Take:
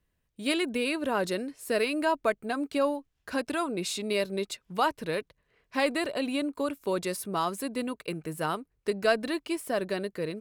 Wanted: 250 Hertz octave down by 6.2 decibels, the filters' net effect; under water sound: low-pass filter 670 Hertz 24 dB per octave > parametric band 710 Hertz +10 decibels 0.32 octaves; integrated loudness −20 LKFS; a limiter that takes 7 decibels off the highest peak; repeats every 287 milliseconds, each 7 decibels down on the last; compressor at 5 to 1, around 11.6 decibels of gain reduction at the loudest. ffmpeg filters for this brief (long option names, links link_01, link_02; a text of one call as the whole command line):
ffmpeg -i in.wav -af "equalizer=frequency=250:width_type=o:gain=-8.5,acompressor=threshold=-34dB:ratio=5,alimiter=level_in=5dB:limit=-24dB:level=0:latency=1,volume=-5dB,lowpass=frequency=670:width=0.5412,lowpass=frequency=670:width=1.3066,equalizer=frequency=710:width_type=o:width=0.32:gain=10,aecho=1:1:287|574|861|1148|1435:0.447|0.201|0.0905|0.0407|0.0183,volume=21dB" out.wav